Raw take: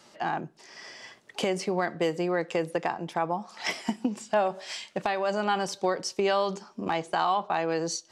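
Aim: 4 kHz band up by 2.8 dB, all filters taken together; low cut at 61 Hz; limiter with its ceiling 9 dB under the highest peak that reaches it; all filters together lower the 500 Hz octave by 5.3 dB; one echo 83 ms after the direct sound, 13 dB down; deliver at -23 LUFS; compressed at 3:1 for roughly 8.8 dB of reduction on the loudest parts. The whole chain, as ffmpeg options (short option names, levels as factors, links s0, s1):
-af "highpass=61,equalizer=f=500:t=o:g=-7,equalizer=f=4000:t=o:g=4,acompressor=threshold=0.0178:ratio=3,alimiter=level_in=1.33:limit=0.0631:level=0:latency=1,volume=0.75,aecho=1:1:83:0.224,volume=6.31"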